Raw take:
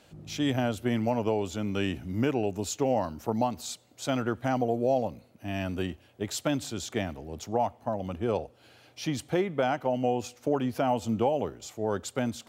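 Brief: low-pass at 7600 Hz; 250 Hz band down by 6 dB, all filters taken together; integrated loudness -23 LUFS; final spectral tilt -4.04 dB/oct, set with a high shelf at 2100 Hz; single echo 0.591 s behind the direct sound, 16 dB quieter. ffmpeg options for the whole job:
-af "lowpass=7.6k,equalizer=f=250:t=o:g=-7.5,highshelf=f=2.1k:g=6.5,aecho=1:1:591:0.158,volume=8dB"

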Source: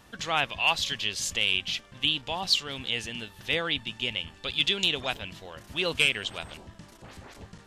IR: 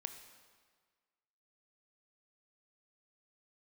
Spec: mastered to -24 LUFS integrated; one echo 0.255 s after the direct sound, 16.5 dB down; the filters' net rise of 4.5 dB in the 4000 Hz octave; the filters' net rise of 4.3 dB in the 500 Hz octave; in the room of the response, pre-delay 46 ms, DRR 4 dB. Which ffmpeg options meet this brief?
-filter_complex "[0:a]equalizer=f=500:t=o:g=5,equalizer=f=4k:t=o:g=6,aecho=1:1:255:0.15,asplit=2[a][b];[1:a]atrim=start_sample=2205,adelay=46[c];[b][c]afir=irnorm=-1:irlink=0,volume=-1dB[d];[a][d]amix=inputs=2:normalize=0,volume=-2dB"

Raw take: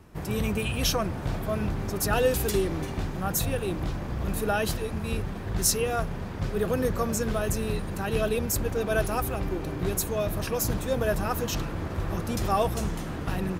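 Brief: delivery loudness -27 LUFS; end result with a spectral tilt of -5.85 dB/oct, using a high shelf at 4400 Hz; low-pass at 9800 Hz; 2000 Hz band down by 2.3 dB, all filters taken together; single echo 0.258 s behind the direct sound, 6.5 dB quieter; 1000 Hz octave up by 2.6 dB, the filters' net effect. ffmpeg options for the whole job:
-af "lowpass=9.8k,equalizer=f=1k:t=o:g=5,equalizer=f=2k:t=o:g=-4,highshelf=f=4.4k:g=-7.5,aecho=1:1:258:0.473,volume=0.5dB"

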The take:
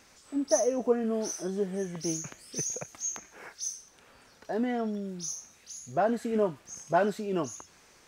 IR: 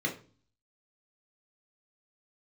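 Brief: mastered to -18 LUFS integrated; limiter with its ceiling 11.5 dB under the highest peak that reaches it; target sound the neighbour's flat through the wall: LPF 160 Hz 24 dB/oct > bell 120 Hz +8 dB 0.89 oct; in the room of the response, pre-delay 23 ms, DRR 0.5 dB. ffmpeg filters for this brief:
-filter_complex "[0:a]alimiter=limit=-24dB:level=0:latency=1,asplit=2[a][b];[1:a]atrim=start_sample=2205,adelay=23[c];[b][c]afir=irnorm=-1:irlink=0,volume=-7dB[d];[a][d]amix=inputs=2:normalize=0,lowpass=f=160:w=0.5412,lowpass=f=160:w=1.3066,equalizer=f=120:t=o:w=0.89:g=8,volume=23dB"

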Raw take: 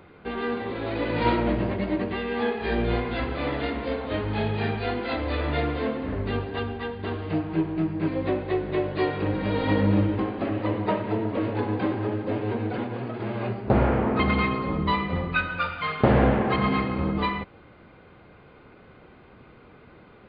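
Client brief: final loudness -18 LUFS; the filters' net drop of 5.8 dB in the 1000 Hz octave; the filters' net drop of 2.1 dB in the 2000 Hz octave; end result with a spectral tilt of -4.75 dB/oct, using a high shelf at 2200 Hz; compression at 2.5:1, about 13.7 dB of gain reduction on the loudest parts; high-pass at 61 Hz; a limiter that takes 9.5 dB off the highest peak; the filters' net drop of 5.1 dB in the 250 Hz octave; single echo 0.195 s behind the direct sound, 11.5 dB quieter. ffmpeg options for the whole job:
-af "highpass=61,equalizer=f=250:t=o:g=-6.5,equalizer=f=1k:t=o:g=-7.5,equalizer=f=2k:t=o:g=-4,highshelf=f=2.2k:g=7,acompressor=threshold=-40dB:ratio=2.5,alimiter=level_in=6dB:limit=-24dB:level=0:latency=1,volume=-6dB,aecho=1:1:195:0.266,volume=21.5dB"

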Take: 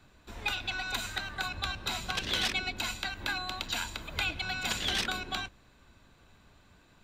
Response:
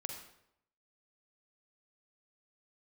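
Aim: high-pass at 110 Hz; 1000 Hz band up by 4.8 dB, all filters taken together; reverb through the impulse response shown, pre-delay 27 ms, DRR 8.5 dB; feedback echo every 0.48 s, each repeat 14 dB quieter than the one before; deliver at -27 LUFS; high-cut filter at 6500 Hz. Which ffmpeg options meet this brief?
-filter_complex "[0:a]highpass=110,lowpass=6.5k,equalizer=f=1k:t=o:g=6.5,aecho=1:1:480|960:0.2|0.0399,asplit=2[a][b];[1:a]atrim=start_sample=2205,adelay=27[c];[b][c]afir=irnorm=-1:irlink=0,volume=-7dB[d];[a][d]amix=inputs=2:normalize=0,volume=4dB"

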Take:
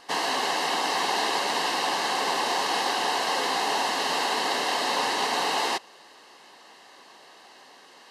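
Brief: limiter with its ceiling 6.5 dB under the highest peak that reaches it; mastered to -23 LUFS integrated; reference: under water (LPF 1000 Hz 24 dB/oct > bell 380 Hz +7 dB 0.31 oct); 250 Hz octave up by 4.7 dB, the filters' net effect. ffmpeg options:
-af "equalizer=f=250:t=o:g=3.5,alimiter=limit=-19dB:level=0:latency=1,lowpass=f=1k:w=0.5412,lowpass=f=1k:w=1.3066,equalizer=f=380:t=o:w=0.31:g=7,volume=8.5dB"

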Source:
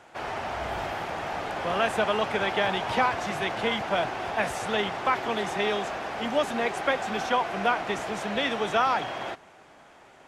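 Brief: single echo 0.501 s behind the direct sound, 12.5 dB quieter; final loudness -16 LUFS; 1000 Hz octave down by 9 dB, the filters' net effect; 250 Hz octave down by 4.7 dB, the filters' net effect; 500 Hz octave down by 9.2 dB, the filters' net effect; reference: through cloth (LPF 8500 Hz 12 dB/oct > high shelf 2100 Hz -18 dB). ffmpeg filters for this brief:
-af "lowpass=8.5k,equalizer=f=250:t=o:g=-3.5,equalizer=f=500:t=o:g=-8,equalizer=f=1k:t=o:g=-4.5,highshelf=f=2.1k:g=-18,aecho=1:1:501:0.237,volume=20.5dB"

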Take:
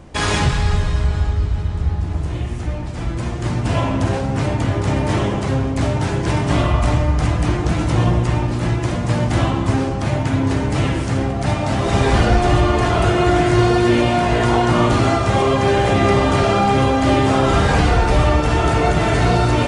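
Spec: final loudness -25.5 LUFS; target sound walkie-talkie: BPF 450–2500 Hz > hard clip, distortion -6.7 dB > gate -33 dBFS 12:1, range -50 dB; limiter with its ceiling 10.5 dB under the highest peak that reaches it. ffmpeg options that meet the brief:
-af "alimiter=limit=-15dB:level=0:latency=1,highpass=450,lowpass=2.5k,asoftclip=type=hard:threshold=-31.5dB,agate=range=-50dB:threshold=-33dB:ratio=12,volume=11dB"

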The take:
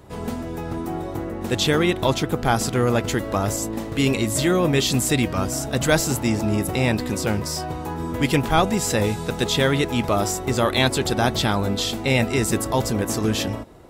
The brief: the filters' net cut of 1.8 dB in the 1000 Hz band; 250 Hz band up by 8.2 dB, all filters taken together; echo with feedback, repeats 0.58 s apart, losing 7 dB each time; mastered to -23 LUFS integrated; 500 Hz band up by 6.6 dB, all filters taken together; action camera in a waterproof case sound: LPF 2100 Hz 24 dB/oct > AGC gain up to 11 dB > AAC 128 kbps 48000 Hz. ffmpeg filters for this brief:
-af "lowpass=f=2.1k:w=0.5412,lowpass=f=2.1k:w=1.3066,equalizer=f=250:t=o:g=8.5,equalizer=f=500:t=o:g=7,equalizer=f=1k:t=o:g=-6.5,aecho=1:1:580|1160|1740|2320|2900:0.447|0.201|0.0905|0.0407|0.0183,dynaudnorm=m=11dB,volume=-6.5dB" -ar 48000 -c:a aac -b:a 128k

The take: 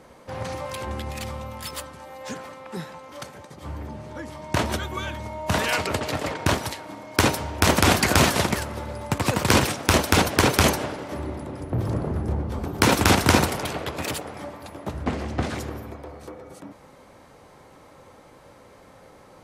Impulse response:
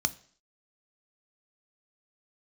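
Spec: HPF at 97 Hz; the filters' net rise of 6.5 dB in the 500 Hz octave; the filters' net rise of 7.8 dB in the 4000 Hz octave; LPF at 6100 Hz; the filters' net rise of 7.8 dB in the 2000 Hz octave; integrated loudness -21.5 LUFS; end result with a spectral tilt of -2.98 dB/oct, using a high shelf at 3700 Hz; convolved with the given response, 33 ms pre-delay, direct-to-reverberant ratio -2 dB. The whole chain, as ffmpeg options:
-filter_complex "[0:a]highpass=97,lowpass=6.1k,equalizer=f=500:t=o:g=7.5,equalizer=f=2k:t=o:g=6.5,highshelf=f=3.7k:g=8,equalizer=f=4k:t=o:g=3.5,asplit=2[a][b];[1:a]atrim=start_sample=2205,adelay=33[c];[b][c]afir=irnorm=-1:irlink=0,volume=-4dB[d];[a][d]amix=inputs=2:normalize=0,volume=-7.5dB"

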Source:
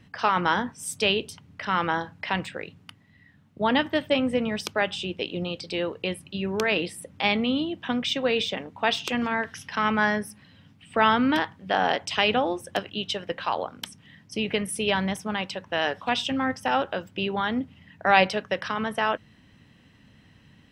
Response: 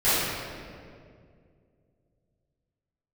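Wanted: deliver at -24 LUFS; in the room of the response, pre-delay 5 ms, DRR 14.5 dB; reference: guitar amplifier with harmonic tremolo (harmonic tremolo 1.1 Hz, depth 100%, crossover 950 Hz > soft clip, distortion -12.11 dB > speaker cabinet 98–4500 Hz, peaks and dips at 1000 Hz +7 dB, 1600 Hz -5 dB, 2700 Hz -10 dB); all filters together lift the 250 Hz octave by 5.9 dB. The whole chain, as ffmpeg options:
-filter_complex "[0:a]equalizer=f=250:t=o:g=7,asplit=2[a][b];[1:a]atrim=start_sample=2205,adelay=5[c];[b][c]afir=irnorm=-1:irlink=0,volume=-32.5dB[d];[a][d]amix=inputs=2:normalize=0,acrossover=split=950[e][f];[e]aeval=exprs='val(0)*(1-1/2+1/2*cos(2*PI*1.1*n/s))':c=same[g];[f]aeval=exprs='val(0)*(1-1/2-1/2*cos(2*PI*1.1*n/s))':c=same[h];[g][h]amix=inputs=2:normalize=0,asoftclip=threshold=-21dB,highpass=98,equalizer=f=1k:t=q:w=4:g=7,equalizer=f=1.6k:t=q:w=4:g=-5,equalizer=f=2.7k:t=q:w=4:g=-10,lowpass=f=4.5k:w=0.5412,lowpass=f=4.5k:w=1.3066,volume=7.5dB"

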